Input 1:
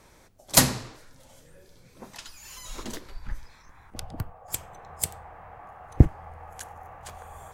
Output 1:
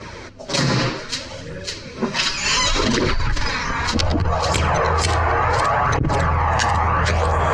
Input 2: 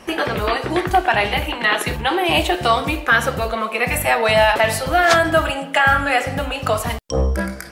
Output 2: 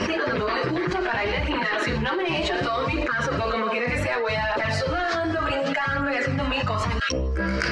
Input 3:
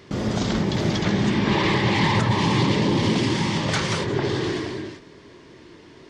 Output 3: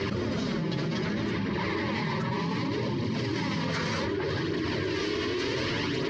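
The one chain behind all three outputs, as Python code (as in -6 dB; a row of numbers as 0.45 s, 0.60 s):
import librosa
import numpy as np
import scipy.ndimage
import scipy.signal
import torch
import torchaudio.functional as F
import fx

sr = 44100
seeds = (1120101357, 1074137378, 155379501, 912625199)

p1 = fx.highpass(x, sr, hz=67.0, slope=6)
p2 = 10.0 ** (-14.0 / 20.0) * (np.abs((p1 / 10.0 ** (-14.0 / 20.0) + 3.0) % 4.0 - 2.0) - 1.0)
p3 = p1 + (p2 * 10.0 ** (-11.0 / 20.0))
p4 = fx.peak_eq(p3, sr, hz=760.0, db=-12.5, octaves=0.22)
p5 = fx.notch(p4, sr, hz=3500.0, q=12.0)
p6 = p5 + fx.echo_wet_highpass(p5, sr, ms=551, feedback_pct=78, hz=2300.0, wet_db=-23, dry=0)
p7 = fx.dynamic_eq(p6, sr, hz=2900.0, q=2.1, threshold_db=-34.0, ratio=4.0, max_db=-6)
p8 = scipy.signal.sosfilt(scipy.signal.butter(4, 5300.0, 'lowpass', fs=sr, output='sos'), p7)
p9 = fx.rider(p8, sr, range_db=5, speed_s=0.5)
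p10 = fx.chorus_voices(p9, sr, voices=2, hz=0.33, base_ms=10, depth_ms=3.0, mix_pct=65)
p11 = fx.env_flatten(p10, sr, amount_pct=100)
y = p11 * 10.0 ** (-11.0 / 20.0)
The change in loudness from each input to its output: +6.0 LU, -6.5 LU, -7.5 LU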